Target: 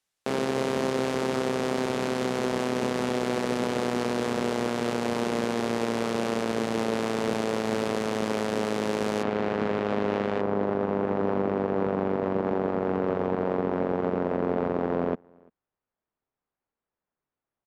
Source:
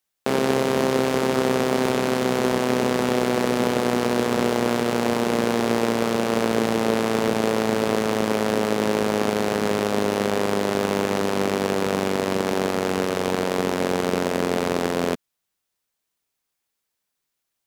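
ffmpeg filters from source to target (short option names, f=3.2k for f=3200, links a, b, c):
-filter_complex "[0:a]asetnsamples=n=441:p=0,asendcmd='9.23 lowpass f 2500;10.41 lowpass f 1200',lowpass=10k,alimiter=limit=-14.5dB:level=0:latency=1:release=97,asplit=2[a][b];[b]adelay=344,volume=-29dB,highshelf=f=4k:g=-7.74[c];[a][c]amix=inputs=2:normalize=0"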